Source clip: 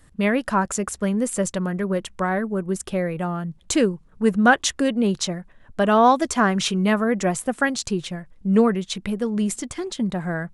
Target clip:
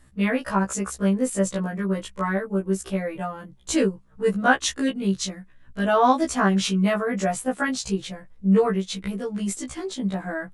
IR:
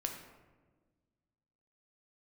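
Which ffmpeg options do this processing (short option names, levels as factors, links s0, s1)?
-filter_complex "[0:a]asettb=1/sr,asplit=3[s0][s1][s2];[s0]atrim=end=4.914[s3];[s1]atrim=start=4.91:end=5.88,asetpts=PTS-STARTPTS,afade=t=in:d=0.004:c=qsin,afade=t=out:st=0.966:d=0.004:c=qsin,equalizer=f=690:w=0.96:g=-10[s4];[s2]atrim=start=5.876[s5];[s3][s4]acrossfade=d=0.004:c1=hsin:c2=qsin[s6];[s6][s5]acrossfade=d=0.004:c1=qsin:c2=hsin,afftfilt=real='re*1.73*eq(mod(b,3),0)':imag='im*1.73*eq(mod(b,3),0)':win_size=2048:overlap=0.75"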